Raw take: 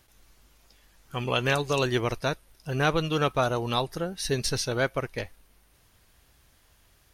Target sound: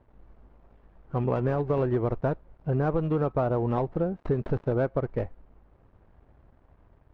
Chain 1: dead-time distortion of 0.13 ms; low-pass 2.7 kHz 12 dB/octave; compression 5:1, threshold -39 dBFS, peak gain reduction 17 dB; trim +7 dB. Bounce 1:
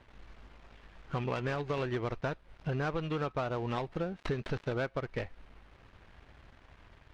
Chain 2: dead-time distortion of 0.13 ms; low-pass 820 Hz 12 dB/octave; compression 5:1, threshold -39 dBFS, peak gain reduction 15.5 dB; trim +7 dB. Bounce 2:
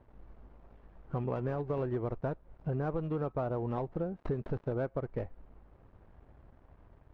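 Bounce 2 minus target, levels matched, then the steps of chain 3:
compression: peak gain reduction +8 dB
dead-time distortion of 0.13 ms; low-pass 820 Hz 12 dB/octave; compression 5:1, threshold -29 dBFS, peak gain reduction 7.5 dB; trim +7 dB

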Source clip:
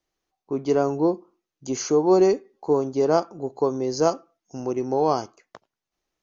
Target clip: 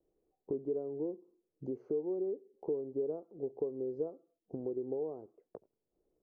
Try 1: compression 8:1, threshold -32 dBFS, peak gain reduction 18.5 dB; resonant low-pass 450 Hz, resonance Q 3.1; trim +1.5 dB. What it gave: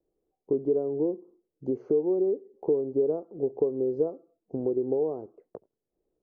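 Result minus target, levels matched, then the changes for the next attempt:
compression: peak gain reduction -10 dB
change: compression 8:1, threshold -43.5 dBFS, peak gain reduction 28.5 dB

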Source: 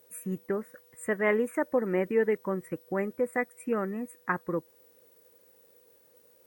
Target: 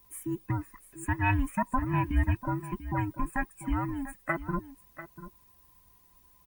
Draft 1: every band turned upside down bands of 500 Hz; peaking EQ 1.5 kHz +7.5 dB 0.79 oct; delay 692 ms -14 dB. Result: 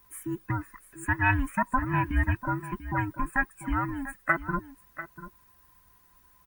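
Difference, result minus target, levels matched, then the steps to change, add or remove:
2 kHz band +5.0 dB
change: peaking EQ 1.5 kHz -2.5 dB 0.79 oct

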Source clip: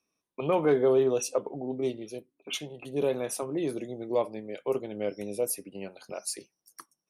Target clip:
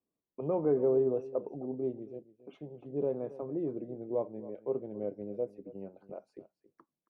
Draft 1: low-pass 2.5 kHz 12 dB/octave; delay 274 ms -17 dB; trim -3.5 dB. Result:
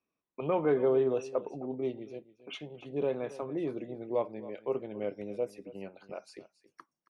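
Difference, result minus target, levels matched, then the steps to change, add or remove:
2 kHz band +16.0 dB
change: low-pass 640 Hz 12 dB/octave

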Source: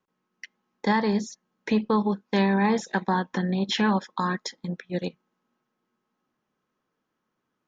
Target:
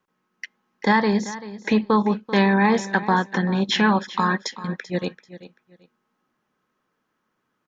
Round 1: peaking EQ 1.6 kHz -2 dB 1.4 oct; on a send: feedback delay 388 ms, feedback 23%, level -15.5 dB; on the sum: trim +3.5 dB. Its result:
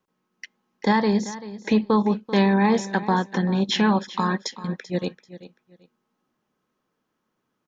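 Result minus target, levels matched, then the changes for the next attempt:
2 kHz band -4.5 dB
change: peaking EQ 1.6 kHz +4 dB 1.4 oct

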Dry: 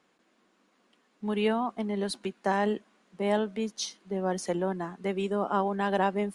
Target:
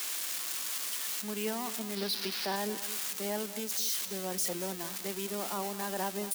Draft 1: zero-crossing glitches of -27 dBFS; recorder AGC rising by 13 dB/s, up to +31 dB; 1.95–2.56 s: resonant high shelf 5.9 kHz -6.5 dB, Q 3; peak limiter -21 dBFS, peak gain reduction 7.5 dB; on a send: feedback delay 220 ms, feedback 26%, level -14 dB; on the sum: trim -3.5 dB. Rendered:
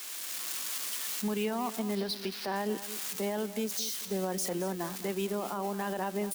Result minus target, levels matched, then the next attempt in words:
zero-crossing glitches: distortion -11 dB
zero-crossing glitches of -16 dBFS; recorder AGC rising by 13 dB/s, up to +31 dB; 1.95–2.56 s: resonant high shelf 5.9 kHz -6.5 dB, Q 3; peak limiter -21 dBFS, peak gain reduction 7.5 dB; on a send: feedback delay 220 ms, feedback 26%, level -14 dB; on the sum: trim -3.5 dB

